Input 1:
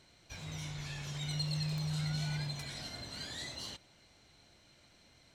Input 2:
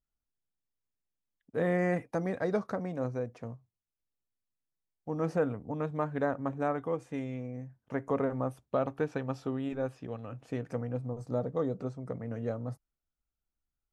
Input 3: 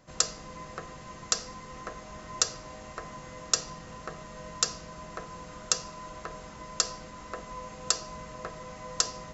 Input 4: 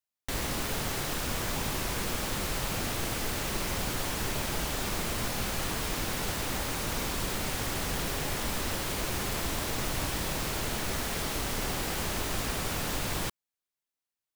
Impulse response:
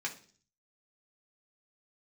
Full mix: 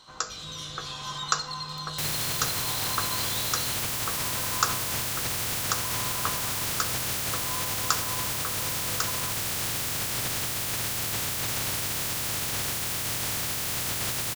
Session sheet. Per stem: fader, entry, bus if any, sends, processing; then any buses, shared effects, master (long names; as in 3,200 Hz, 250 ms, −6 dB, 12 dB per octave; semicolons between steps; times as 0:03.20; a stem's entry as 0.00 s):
−2.5 dB, 0.00 s, no send, high shelf with overshoot 2,500 Hz +10 dB, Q 3; downward compressor, threshold −31 dBFS, peak gain reduction 11.5 dB
muted
−5.0 dB, 0.00 s, send −3 dB, flat-topped bell 1,100 Hz +13 dB 1.1 octaves; rotating-speaker cabinet horn 0.6 Hz
+3.0 dB, 1.70 s, no send, ceiling on every frequency bin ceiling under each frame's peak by 28 dB; parametric band 110 Hz +14 dB 1.1 octaves; hard clipping −29 dBFS, distortion −12 dB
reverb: on, RT60 0.45 s, pre-delay 3 ms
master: no processing